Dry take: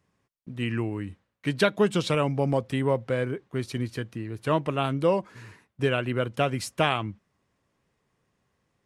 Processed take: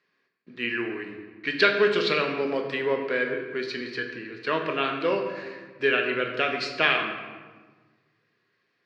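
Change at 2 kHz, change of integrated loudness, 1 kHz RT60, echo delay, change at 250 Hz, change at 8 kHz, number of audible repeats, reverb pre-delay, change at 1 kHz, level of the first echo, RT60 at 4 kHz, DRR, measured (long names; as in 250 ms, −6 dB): +8.0 dB, +1.5 dB, 1.4 s, no echo audible, −3.5 dB, can't be measured, no echo audible, 4 ms, +0.5 dB, no echo audible, 0.90 s, 2.5 dB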